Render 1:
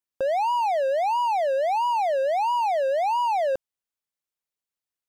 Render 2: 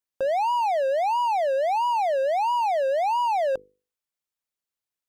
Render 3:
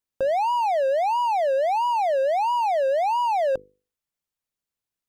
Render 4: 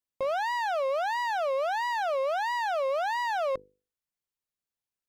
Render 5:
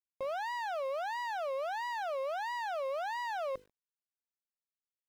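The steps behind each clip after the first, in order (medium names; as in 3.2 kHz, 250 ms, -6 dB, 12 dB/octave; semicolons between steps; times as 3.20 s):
hum notches 50/100/150/200/250/300/350/400/450/500 Hz
bass shelf 290 Hz +8 dB
self-modulated delay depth 0.21 ms; trim -5.5 dB
bit crusher 10-bit; trim -7.5 dB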